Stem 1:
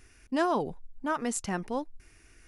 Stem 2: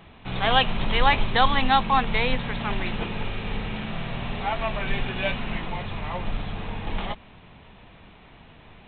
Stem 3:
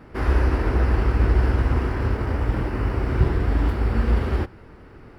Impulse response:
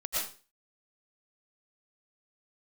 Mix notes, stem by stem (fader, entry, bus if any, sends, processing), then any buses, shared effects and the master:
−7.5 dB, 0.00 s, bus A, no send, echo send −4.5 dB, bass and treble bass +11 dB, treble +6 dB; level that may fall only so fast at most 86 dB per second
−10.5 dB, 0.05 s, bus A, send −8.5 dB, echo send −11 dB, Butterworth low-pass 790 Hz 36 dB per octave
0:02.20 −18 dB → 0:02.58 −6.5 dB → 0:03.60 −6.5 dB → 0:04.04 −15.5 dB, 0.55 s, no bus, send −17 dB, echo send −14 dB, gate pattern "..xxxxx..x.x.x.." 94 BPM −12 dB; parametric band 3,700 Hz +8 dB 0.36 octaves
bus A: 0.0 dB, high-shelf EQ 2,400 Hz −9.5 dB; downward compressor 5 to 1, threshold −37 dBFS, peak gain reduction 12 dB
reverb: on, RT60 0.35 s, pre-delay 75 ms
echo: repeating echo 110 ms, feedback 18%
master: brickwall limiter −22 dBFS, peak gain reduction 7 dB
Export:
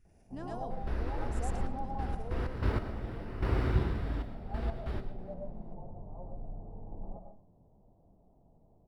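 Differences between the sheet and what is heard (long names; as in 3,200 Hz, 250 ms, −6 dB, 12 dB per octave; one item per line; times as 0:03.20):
stem 1 −7.5 dB → −18.5 dB
stem 2 −10.5 dB → −16.5 dB
master: missing brickwall limiter −22 dBFS, peak gain reduction 7 dB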